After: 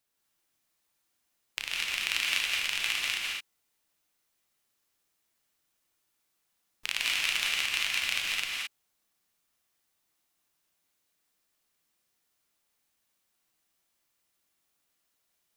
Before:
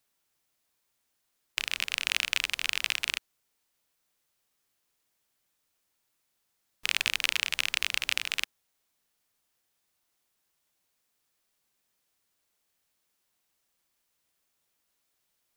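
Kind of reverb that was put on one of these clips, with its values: non-linear reverb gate 0.24 s rising, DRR -3 dB; gain -4.5 dB

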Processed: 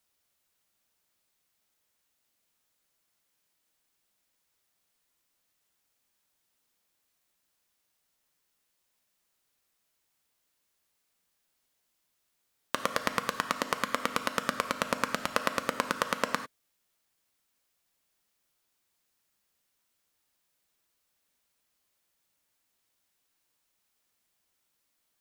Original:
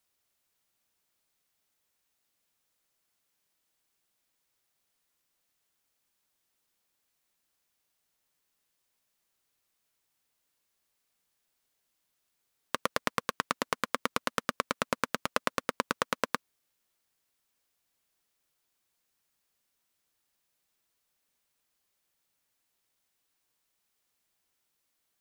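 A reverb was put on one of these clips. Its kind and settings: non-linear reverb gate 0.12 s flat, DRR 8 dB; gain +1 dB

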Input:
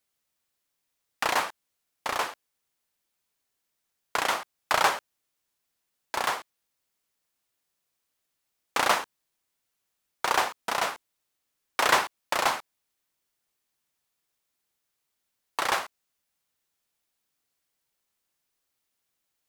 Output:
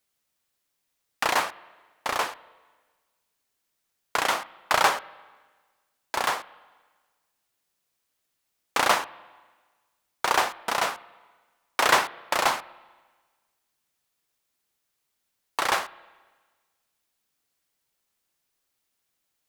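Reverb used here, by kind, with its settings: spring tank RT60 1.4 s, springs 31/39/48 ms, chirp 40 ms, DRR 19 dB; gain +2 dB

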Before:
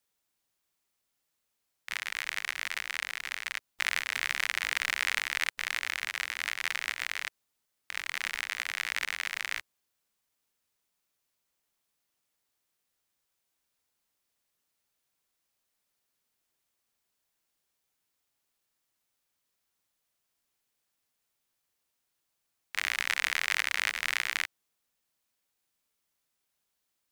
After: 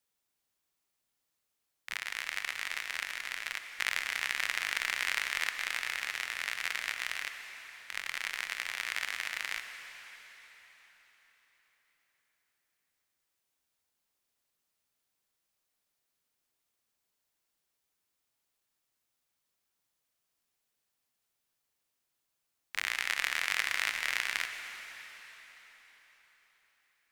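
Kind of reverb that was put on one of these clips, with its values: plate-style reverb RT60 4.6 s, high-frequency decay 0.9×, pre-delay 75 ms, DRR 7 dB; gain -2.5 dB

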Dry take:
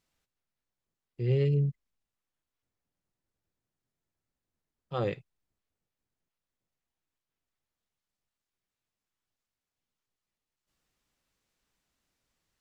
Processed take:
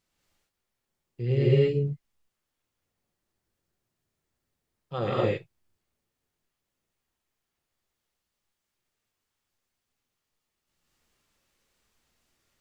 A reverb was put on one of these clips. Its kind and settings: non-linear reverb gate 0.26 s rising, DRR -6.5 dB

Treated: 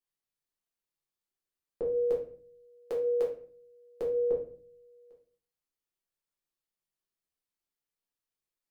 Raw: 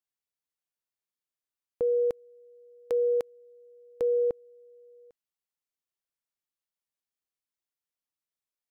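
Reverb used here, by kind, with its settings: shoebox room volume 43 m³, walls mixed, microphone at 1.1 m; gain -6 dB

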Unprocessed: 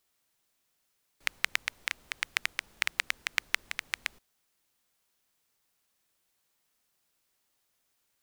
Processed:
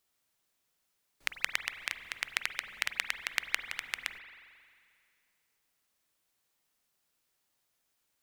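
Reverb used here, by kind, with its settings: spring tank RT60 2.2 s, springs 44 ms, chirp 35 ms, DRR 9 dB; gain -2.5 dB

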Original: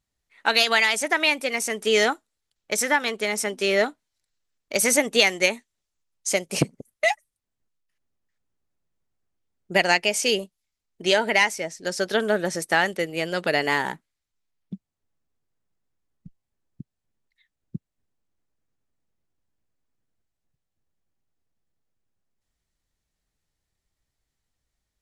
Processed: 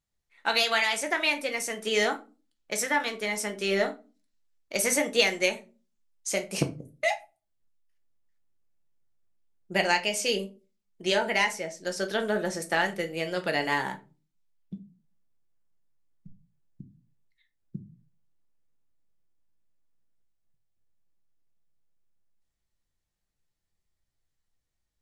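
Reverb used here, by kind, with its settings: shoebox room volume 140 m³, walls furnished, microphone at 0.81 m; gain -6 dB

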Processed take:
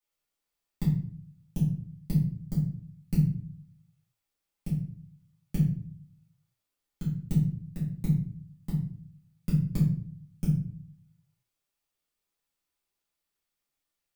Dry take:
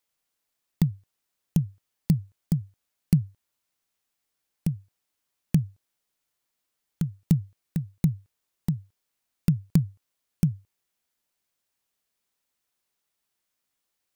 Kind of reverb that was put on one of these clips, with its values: shoebox room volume 58 m³, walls mixed, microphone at 2 m; gain -13.5 dB

